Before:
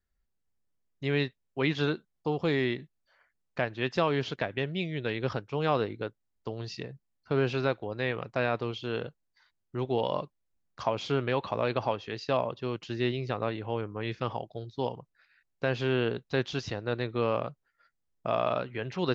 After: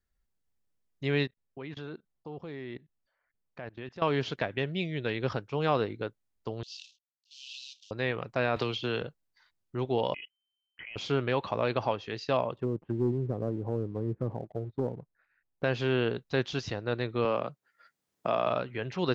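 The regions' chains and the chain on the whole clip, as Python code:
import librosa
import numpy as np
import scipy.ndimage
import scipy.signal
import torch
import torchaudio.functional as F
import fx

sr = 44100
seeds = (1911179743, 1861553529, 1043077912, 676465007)

y = fx.chain(x, sr, fx.high_shelf(hz=3300.0, db=-10.0),
    fx.level_steps(step_db=20), at=(1.26, 4.02))
y = fx.chain(y, sr, fx.cvsd(bps=32000),
    fx.steep_highpass(hz=2800.0, slope=72),
    fx.transient(attack_db=-5, sustain_db=7), at=(6.63, 7.91))
y = fx.chain(y, sr, fx.lowpass(hz=3100.0, slope=6),
    fx.high_shelf(hz=2300.0, db=10.5),
    fx.band_squash(depth_pct=100), at=(8.56, 9.02))
y = fx.chain(y, sr, fx.level_steps(step_db=22),
    fx.freq_invert(carrier_hz=3100), at=(10.14, 10.96))
y = fx.chain(y, sr, fx.lowpass(hz=1400.0, slope=12),
    fx.env_lowpass_down(base_hz=430.0, full_db=-31.0),
    fx.leveller(passes=1), at=(12.56, 15.64))
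y = fx.chain(y, sr, fx.highpass(hz=150.0, slope=12),
    fx.band_squash(depth_pct=40), at=(17.25, 18.47))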